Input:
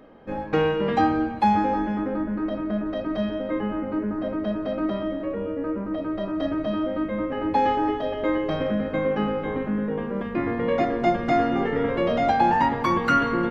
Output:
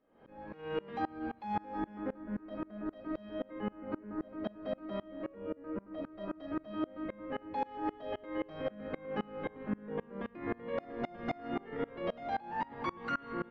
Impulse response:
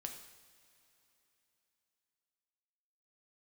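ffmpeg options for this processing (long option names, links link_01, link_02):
-af "lowpass=4600,lowshelf=frequency=180:gain=-4.5,alimiter=limit=-18.5dB:level=0:latency=1:release=47,areverse,acompressor=mode=upward:threshold=-38dB:ratio=2.5,areverse,aeval=exprs='val(0)*pow(10,-27*if(lt(mod(-3.8*n/s,1),2*abs(-3.8)/1000),1-mod(-3.8*n/s,1)/(2*abs(-3.8)/1000),(mod(-3.8*n/s,1)-2*abs(-3.8)/1000)/(1-2*abs(-3.8)/1000))/20)':channel_layout=same,volume=-4dB"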